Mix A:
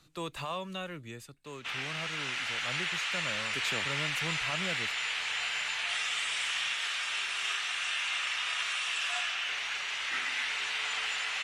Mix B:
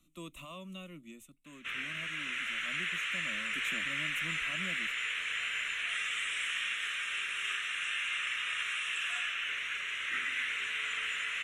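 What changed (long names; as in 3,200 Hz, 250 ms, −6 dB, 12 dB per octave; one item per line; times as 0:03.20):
speech: add phaser with its sweep stopped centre 440 Hz, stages 6
master: add phaser with its sweep stopped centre 2,000 Hz, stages 4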